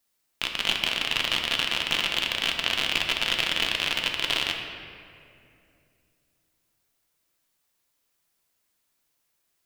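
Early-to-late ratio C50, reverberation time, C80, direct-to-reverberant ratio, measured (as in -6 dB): 4.5 dB, 2.6 s, 5.5 dB, 2.0 dB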